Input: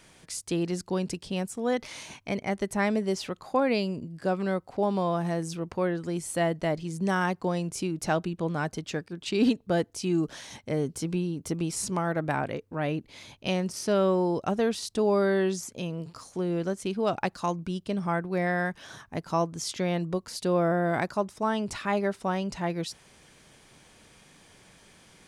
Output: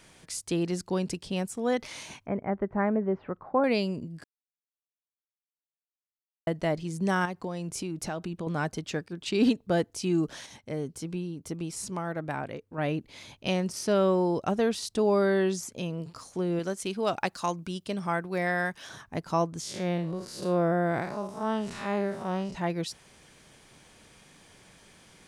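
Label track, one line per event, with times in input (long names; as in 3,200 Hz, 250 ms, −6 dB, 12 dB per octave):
2.260000	3.640000	low-pass filter 1,600 Hz 24 dB per octave
4.240000	6.470000	silence
7.250000	8.470000	downward compressor 4 to 1, threshold −30 dBFS
10.460000	12.780000	clip gain −5 dB
16.590000	18.890000	spectral tilt +1.5 dB per octave
19.600000	22.550000	spectrum smeared in time width 133 ms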